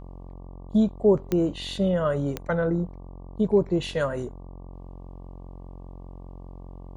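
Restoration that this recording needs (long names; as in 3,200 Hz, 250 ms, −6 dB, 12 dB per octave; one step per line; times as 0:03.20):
click removal
hum removal 45 Hz, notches 26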